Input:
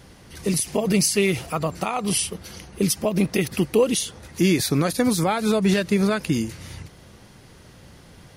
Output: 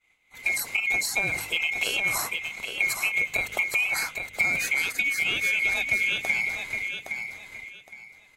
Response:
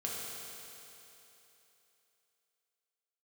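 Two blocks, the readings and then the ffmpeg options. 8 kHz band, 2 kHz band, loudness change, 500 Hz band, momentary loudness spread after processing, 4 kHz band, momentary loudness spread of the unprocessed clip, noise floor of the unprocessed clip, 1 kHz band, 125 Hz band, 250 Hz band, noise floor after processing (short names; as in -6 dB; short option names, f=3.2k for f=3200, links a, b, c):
-7.0 dB, +9.5 dB, -2.5 dB, -18.0 dB, 11 LU, -1.5 dB, 11 LU, -49 dBFS, -8.5 dB, -21.0 dB, -25.0 dB, -58 dBFS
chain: -filter_complex "[0:a]afftfilt=real='real(if(lt(b,920),b+92*(1-2*mod(floor(b/92),2)),b),0)':imag='imag(if(lt(b,920),b+92*(1-2*mod(floor(b/92),2)),b),0)':win_size=2048:overlap=0.75,bandreject=f=51.1:t=h:w=4,bandreject=f=102.2:t=h:w=4,bandreject=f=153.3:t=h:w=4,bandreject=f=204.4:t=h:w=4,bandreject=f=255.5:t=h:w=4,bandreject=f=306.6:t=h:w=4,asplit=2[a][b];[b]adynamicsmooth=sensitivity=1.5:basefreq=4.2k,volume=-3dB[c];[a][c]amix=inputs=2:normalize=0,agate=range=-33dB:threshold=-31dB:ratio=3:detection=peak,acompressor=threshold=-21dB:ratio=6,aecho=1:1:815|1630|2445:0.473|0.118|0.0296,volume=-2dB"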